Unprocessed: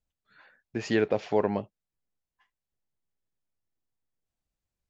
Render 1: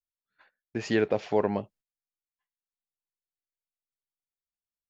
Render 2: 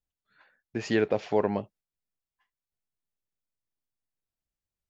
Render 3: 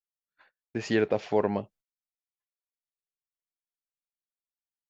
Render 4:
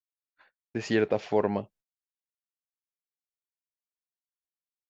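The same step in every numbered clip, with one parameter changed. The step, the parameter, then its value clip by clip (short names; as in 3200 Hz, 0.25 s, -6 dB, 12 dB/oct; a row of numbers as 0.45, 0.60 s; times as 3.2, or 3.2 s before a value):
gate, range: -21, -6, -34, -55 dB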